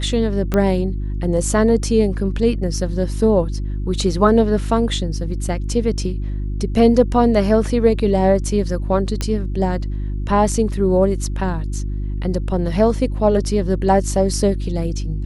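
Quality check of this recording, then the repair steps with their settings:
mains hum 50 Hz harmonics 7 −23 dBFS
0:00.54: click −7 dBFS
0:09.21: click −8 dBFS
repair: click removal
hum removal 50 Hz, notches 7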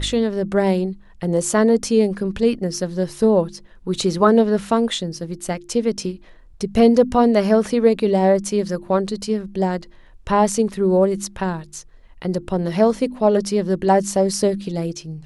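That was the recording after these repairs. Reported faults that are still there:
none of them is left

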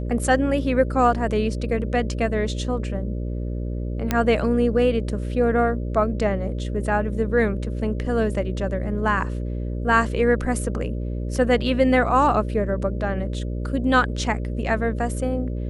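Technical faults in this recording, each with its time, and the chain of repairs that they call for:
mains buzz 60 Hz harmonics 10 −27 dBFS
0:04.11: click −7 dBFS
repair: click removal
hum removal 60 Hz, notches 10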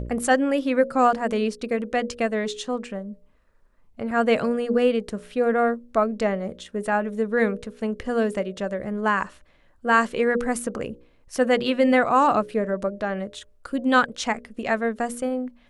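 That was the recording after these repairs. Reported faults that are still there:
none of them is left

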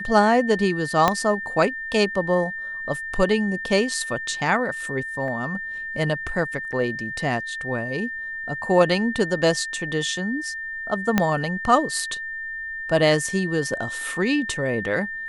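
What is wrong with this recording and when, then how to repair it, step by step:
whistle 1,800 Hz −29 dBFS
0:01.08: click −4 dBFS
0:05.28: drop-out 2.7 ms
0:06.72–0:06.73: drop-out 7.2 ms
0:11.18: click −4 dBFS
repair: click removal
notch filter 1,800 Hz, Q 30
repair the gap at 0:05.28, 2.7 ms
repair the gap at 0:06.72, 7.2 ms

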